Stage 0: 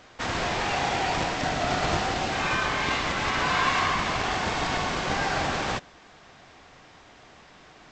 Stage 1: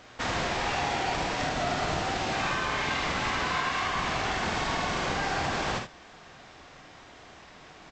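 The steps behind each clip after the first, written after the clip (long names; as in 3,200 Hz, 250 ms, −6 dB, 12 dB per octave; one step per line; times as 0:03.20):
downward compressor, threshold −27 dBFS, peak gain reduction 8 dB
ambience of single reflections 50 ms −6 dB, 77 ms −8 dB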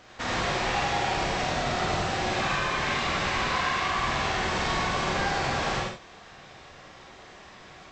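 reverb whose tail is shaped and stops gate 130 ms rising, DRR −1 dB
level −1.5 dB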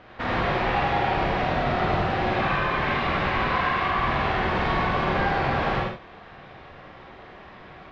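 high-frequency loss of the air 370 metres
level +5.5 dB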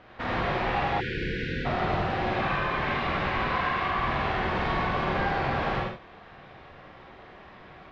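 time-frequency box erased 0:01.01–0:01.66, 530–1,400 Hz
level −3.5 dB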